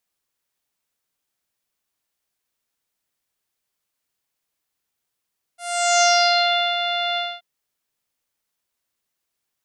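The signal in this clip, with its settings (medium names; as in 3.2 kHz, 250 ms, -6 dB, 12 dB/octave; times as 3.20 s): synth note saw F5 24 dB/octave, low-pass 3.6 kHz, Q 4.7, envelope 1.5 oct, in 0.95 s, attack 434 ms, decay 0.74 s, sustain -9 dB, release 0.24 s, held 1.59 s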